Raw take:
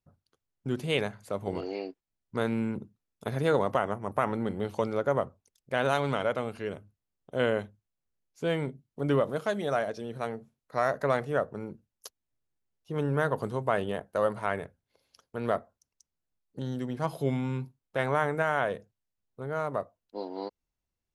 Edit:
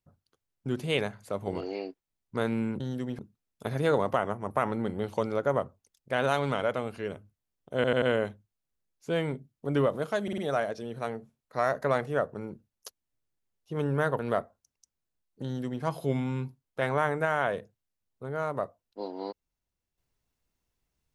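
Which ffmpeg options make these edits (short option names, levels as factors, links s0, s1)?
-filter_complex "[0:a]asplit=10[s0][s1][s2][s3][s4][s5][s6][s7][s8][s9];[s0]atrim=end=2.802[s10];[s1]atrim=start=16.608:end=17.002[s11];[s2]atrim=start=2.798:end=7.452[s12];[s3]atrim=start=7.358:end=7.452[s13];[s4]atrim=start=7.358:end=7.452[s14];[s5]atrim=start=7.358:end=9.622[s15];[s6]atrim=start=9.568:end=9.622[s16];[s7]atrim=start=9.568:end=9.622[s17];[s8]atrim=start=9.568:end=13.382[s18];[s9]atrim=start=15.358[s19];[s10][s11]acrossfade=d=0.004:c1=hsin:c2=hsin[s20];[s20][s12]acrossfade=d=0.004:c1=hsin:c2=hsin[s21];[s21][s13]acrossfade=d=0.004:c1=hsin:c2=hsin[s22];[s22][s14]acrossfade=d=0.004:c1=hsin:c2=hsin[s23];[s23][s15]acrossfade=d=0.004:c1=hsin:c2=hsin[s24];[s24][s16]acrossfade=d=0.004:c1=hsin:c2=hsin[s25];[s25][s17]acrossfade=d=0.004:c1=hsin:c2=hsin[s26];[s26][s18]acrossfade=d=0.004:c1=hsin:c2=hsin[s27];[s27][s19]acrossfade=d=0.004:c1=hsin:c2=hsin"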